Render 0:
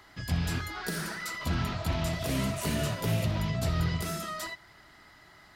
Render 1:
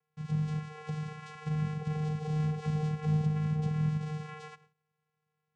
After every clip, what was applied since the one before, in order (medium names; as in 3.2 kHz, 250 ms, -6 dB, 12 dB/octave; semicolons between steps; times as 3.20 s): peaking EQ 910 Hz +7 dB 0.42 oct; gate with hold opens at -41 dBFS; vocoder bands 4, square 153 Hz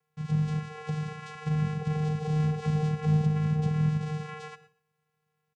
feedback delay 120 ms, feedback 18%, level -19 dB; trim +4.5 dB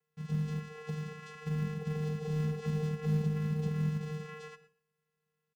in parallel at -10.5 dB: short-mantissa float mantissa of 2-bit; on the sum: band-stop 1.1 kHz, Q 13; comb 4.6 ms, depth 61%; trim -8.5 dB